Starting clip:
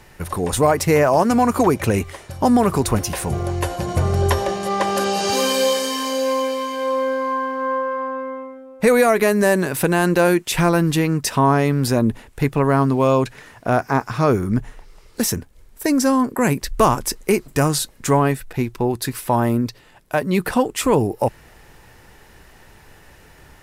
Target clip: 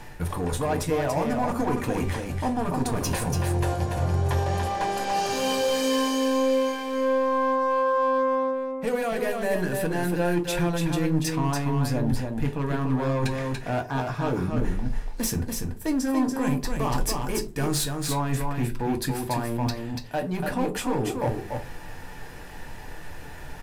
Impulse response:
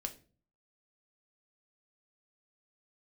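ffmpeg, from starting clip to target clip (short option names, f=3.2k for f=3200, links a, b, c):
-filter_complex "[0:a]lowpass=f=3.2k:p=1,areverse,acompressor=threshold=-30dB:ratio=4,areverse,crystalizer=i=1:c=0,asoftclip=type=hard:threshold=-26.5dB,aecho=1:1:287:0.596[a];[1:a]atrim=start_sample=2205,asetrate=66150,aresample=44100[b];[a][b]afir=irnorm=-1:irlink=0,volume=9dB"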